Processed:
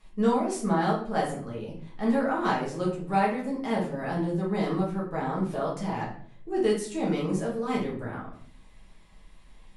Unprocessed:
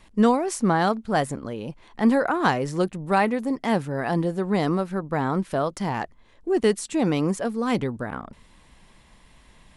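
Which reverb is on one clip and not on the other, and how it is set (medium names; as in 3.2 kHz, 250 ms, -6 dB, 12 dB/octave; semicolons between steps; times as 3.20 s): simulated room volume 63 m³, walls mixed, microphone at 1.4 m; trim -12 dB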